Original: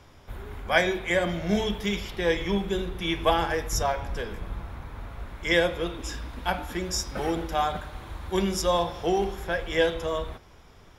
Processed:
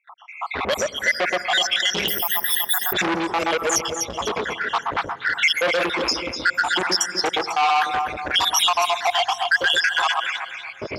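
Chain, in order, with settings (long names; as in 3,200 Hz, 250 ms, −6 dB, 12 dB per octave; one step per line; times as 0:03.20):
time-frequency cells dropped at random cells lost 83%
camcorder AGC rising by 17 dB per second
meter weighting curve A
low-pass that shuts in the quiet parts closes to 1,800 Hz, open at −30 dBFS
noise gate with hold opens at −56 dBFS
delay that swaps between a low-pass and a high-pass 124 ms, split 1,500 Hz, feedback 56%, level −4.5 dB
on a send at −24 dB: convolution reverb RT60 3.5 s, pre-delay 134 ms
0:02.08–0:02.93: on the sum: bad sample-rate conversion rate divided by 3×, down filtered, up zero stuff
boost into a limiter +26.5 dB
saturating transformer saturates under 1,700 Hz
level −7 dB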